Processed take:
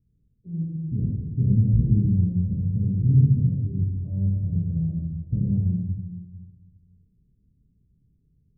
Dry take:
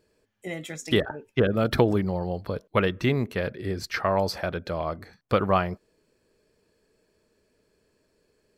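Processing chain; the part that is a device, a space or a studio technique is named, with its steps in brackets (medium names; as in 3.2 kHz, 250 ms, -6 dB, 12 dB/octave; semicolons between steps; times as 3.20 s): club heard from the street (peak limiter -15 dBFS, peak gain reduction 8.5 dB; low-pass 170 Hz 24 dB/octave; reverberation RT60 1.3 s, pre-delay 5 ms, DRR -4.5 dB); trim +6.5 dB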